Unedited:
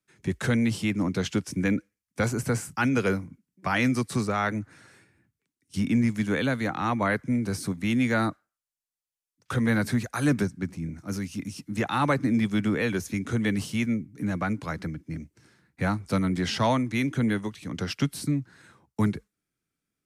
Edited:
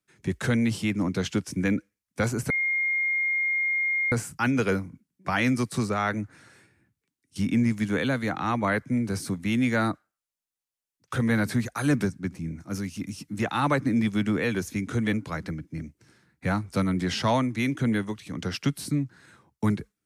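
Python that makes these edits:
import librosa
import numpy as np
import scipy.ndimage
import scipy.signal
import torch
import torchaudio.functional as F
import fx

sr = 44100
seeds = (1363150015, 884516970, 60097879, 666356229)

y = fx.edit(x, sr, fx.insert_tone(at_s=2.5, length_s=1.62, hz=2130.0, db=-22.5),
    fx.cut(start_s=13.51, length_s=0.98), tone=tone)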